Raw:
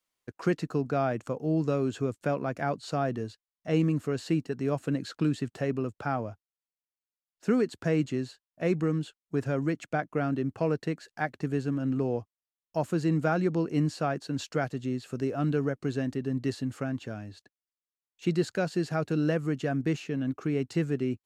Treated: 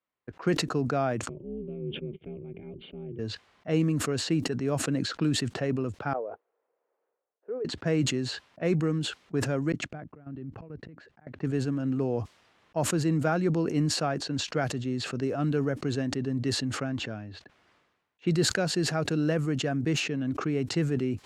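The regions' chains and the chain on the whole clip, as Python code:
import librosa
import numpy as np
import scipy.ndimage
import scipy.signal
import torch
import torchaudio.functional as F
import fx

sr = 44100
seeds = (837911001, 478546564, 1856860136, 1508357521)

y = fx.chain(x, sr, fx.formant_cascade(vowel='i'),
    fx.ring_mod(carrier_hz=110.0), at=(1.29, 3.19))
y = fx.chain(y, sr, fx.ladder_bandpass(hz=510.0, resonance_pct=65),
    fx.low_shelf(hz=390.0, db=-6.5), at=(6.13, 7.65))
y = fx.chain(y, sr, fx.auto_swell(attack_ms=761.0),
    fx.level_steps(step_db=15),
    fx.low_shelf(hz=270.0, db=11.5), at=(9.72, 11.27))
y = scipy.signal.sosfilt(scipy.signal.butter(2, 55.0, 'highpass', fs=sr, output='sos'), y)
y = fx.env_lowpass(y, sr, base_hz=2000.0, full_db=-24.0)
y = fx.sustainer(y, sr, db_per_s=51.0)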